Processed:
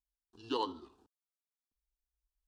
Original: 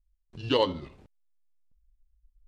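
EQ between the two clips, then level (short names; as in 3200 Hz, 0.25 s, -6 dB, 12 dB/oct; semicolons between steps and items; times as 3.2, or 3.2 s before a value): HPF 280 Hz 6 dB/oct; fixed phaser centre 570 Hz, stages 6; -5.0 dB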